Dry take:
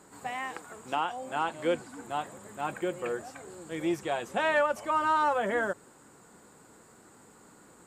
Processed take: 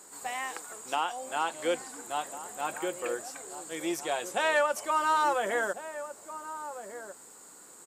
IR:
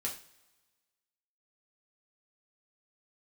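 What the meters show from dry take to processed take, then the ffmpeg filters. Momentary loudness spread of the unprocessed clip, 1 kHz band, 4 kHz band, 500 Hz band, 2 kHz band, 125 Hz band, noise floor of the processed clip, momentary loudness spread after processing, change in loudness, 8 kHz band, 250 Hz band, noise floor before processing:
13 LU, 0.0 dB, +3.5 dB, −0.5 dB, +0.5 dB, −10.5 dB, −52 dBFS, 16 LU, −1.0 dB, +10.0 dB, −3.5 dB, −57 dBFS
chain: -filter_complex "[0:a]bass=frequency=250:gain=-13,treble=frequency=4000:gain=11,asplit=2[link_01][link_02];[link_02]adelay=1399,volume=-11dB,highshelf=frequency=4000:gain=-31.5[link_03];[link_01][link_03]amix=inputs=2:normalize=0"

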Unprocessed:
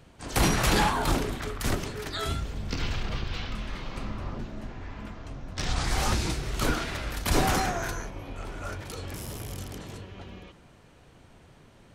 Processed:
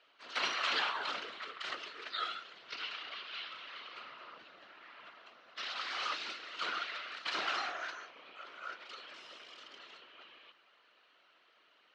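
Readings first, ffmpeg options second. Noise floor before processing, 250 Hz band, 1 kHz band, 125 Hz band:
−55 dBFS, −25.5 dB, −9.0 dB, below −40 dB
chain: -af "highpass=frequency=460:width=0.5412,highpass=frequency=460:width=1.3066,equalizer=frequency=480:width_type=q:width=4:gain=-8,equalizer=frequency=820:width_type=q:width=4:gain=-9,equalizer=frequency=1300:width_type=q:width=4:gain=7,equalizer=frequency=2000:width_type=q:width=4:gain=3,equalizer=frequency=2900:width_type=q:width=4:gain=8,equalizer=frequency=4100:width_type=q:width=4:gain=5,lowpass=frequency=4800:width=0.5412,lowpass=frequency=4800:width=1.3066,afftfilt=real='hypot(re,im)*cos(2*PI*random(0))':imag='hypot(re,im)*sin(2*PI*random(1))':win_size=512:overlap=0.75,volume=-3dB"

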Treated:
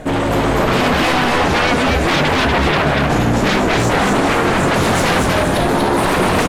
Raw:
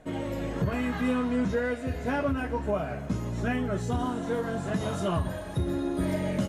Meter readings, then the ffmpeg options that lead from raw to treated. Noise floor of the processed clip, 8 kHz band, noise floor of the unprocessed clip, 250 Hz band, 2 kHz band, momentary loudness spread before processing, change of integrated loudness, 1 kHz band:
−17 dBFS, +21.0 dB, −37 dBFS, +12.0 dB, +20.5 dB, 5 LU, +15.0 dB, +20.0 dB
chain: -filter_complex "[0:a]acontrast=40,aeval=exprs='0.266*sin(PI/2*5.01*val(0)/0.266)':channel_layout=same,asplit=7[link_01][link_02][link_03][link_04][link_05][link_06][link_07];[link_02]adelay=240,afreqshift=82,volume=-3dB[link_08];[link_03]adelay=480,afreqshift=164,volume=-9.4dB[link_09];[link_04]adelay=720,afreqshift=246,volume=-15.8dB[link_10];[link_05]adelay=960,afreqshift=328,volume=-22.1dB[link_11];[link_06]adelay=1200,afreqshift=410,volume=-28.5dB[link_12];[link_07]adelay=1440,afreqshift=492,volume=-34.9dB[link_13];[link_01][link_08][link_09][link_10][link_11][link_12][link_13]amix=inputs=7:normalize=0,volume=-2dB"

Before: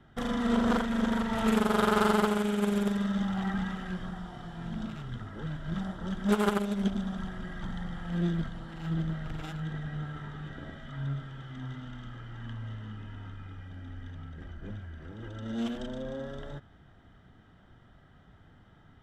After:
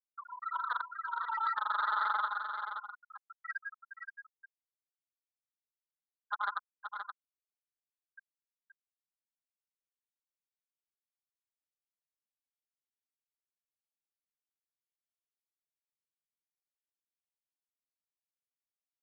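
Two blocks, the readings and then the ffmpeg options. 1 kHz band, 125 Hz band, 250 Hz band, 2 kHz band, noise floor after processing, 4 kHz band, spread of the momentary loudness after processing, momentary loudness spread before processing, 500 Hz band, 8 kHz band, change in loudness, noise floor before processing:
−1.5 dB, below −40 dB, below −40 dB, −3.0 dB, below −85 dBFS, −12.5 dB, 17 LU, 17 LU, −30.0 dB, below −30 dB, −4.0 dB, −58 dBFS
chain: -af "highpass=frequency=940:width=0.5412,highpass=frequency=940:width=1.3066,afftfilt=real='re*gte(hypot(re,im),0.0631)':imag='im*gte(hypot(re,im),0.0631)':win_size=1024:overlap=0.75,alimiter=level_in=3dB:limit=-24dB:level=0:latency=1:release=295,volume=-3dB,asoftclip=type=tanh:threshold=-32.5dB,aecho=1:1:524:0.447,aresample=11025,aresample=44100,volume=8.5dB"

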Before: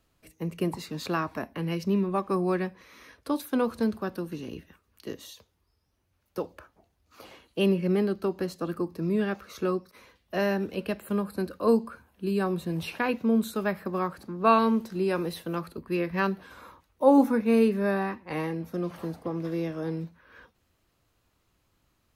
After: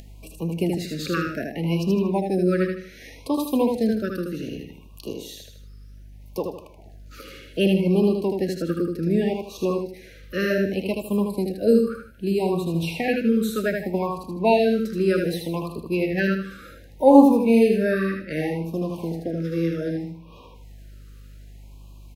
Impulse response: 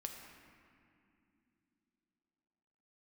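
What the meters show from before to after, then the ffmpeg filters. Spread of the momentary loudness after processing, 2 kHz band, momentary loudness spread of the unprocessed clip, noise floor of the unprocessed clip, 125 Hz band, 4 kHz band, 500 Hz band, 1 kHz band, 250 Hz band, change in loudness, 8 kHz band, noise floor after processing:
16 LU, +4.5 dB, 14 LU, −72 dBFS, +6.0 dB, +6.0 dB, +6.0 dB, +1.5 dB, +5.5 dB, +5.5 dB, +6.0 dB, −46 dBFS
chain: -filter_complex "[0:a]aeval=exprs='val(0)+0.00112*(sin(2*PI*50*n/s)+sin(2*PI*2*50*n/s)/2+sin(2*PI*3*50*n/s)/3+sin(2*PI*4*50*n/s)/4+sin(2*PI*5*50*n/s)/5)':channel_layout=same,acrossover=split=3400[link_01][link_02];[link_02]volume=32.5dB,asoftclip=hard,volume=-32.5dB[link_03];[link_01][link_03]amix=inputs=2:normalize=0,aecho=1:1:78|156|234|312:0.631|0.221|0.0773|0.0271,aeval=exprs='0.501*(cos(1*acos(clip(val(0)/0.501,-1,1)))-cos(1*PI/2))+0.0158*(cos(3*acos(clip(val(0)/0.501,-1,1)))-cos(3*PI/2))':channel_layout=same,acompressor=mode=upward:threshold=-39dB:ratio=2.5,afftfilt=real='re*(1-between(b*sr/1024,810*pow(1700/810,0.5+0.5*sin(2*PI*0.65*pts/sr))/1.41,810*pow(1700/810,0.5+0.5*sin(2*PI*0.65*pts/sr))*1.41))':imag='im*(1-between(b*sr/1024,810*pow(1700/810,0.5+0.5*sin(2*PI*0.65*pts/sr))/1.41,810*pow(1700/810,0.5+0.5*sin(2*PI*0.65*pts/sr))*1.41))':win_size=1024:overlap=0.75,volume=5dB"

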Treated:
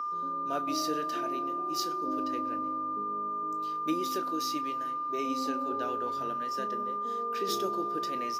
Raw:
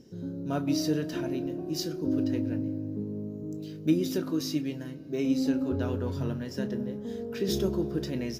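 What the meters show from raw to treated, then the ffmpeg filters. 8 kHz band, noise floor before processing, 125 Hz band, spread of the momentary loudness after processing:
0.0 dB, −41 dBFS, −20.0 dB, 3 LU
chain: -af "aeval=exprs='val(0)+0.0282*sin(2*PI*1200*n/s)':channel_layout=same,highpass=450"

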